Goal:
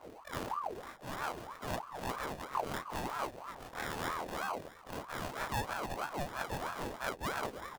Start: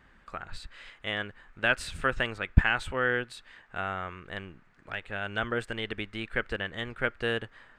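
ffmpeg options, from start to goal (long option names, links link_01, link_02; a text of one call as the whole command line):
ffmpeg -i in.wav -filter_complex "[0:a]afftfilt=real='re':imag='-im':win_size=2048:overlap=0.75,alimiter=limit=-19dB:level=0:latency=1:release=423,areverse,acompressor=threshold=-47dB:ratio=8,areverse,highshelf=frequency=5700:gain=-6.5,acrossover=split=2000[link_01][link_02];[link_02]adelay=290[link_03];[link_01][link_03]amix=inputs=2:normalize=0,afftdn=noise_reduction=16:noise_floor=-67,highshelf=frequency=2200:gain=-10,asplit=2[link_04][link_05];[link_05]adelay=34,volume=-7dB[link_06];[link_04][link_06]amix=inputs=2:normalize=0,acrusher=samples=25:mix=1:aa=0.000001,aeval=exprs='val(0)*sin(2*PI*770*n/s+770*0.55/3.1*sin(2*PI*3.1*n/s))':channel_layout=same,volume=17dB" out.wav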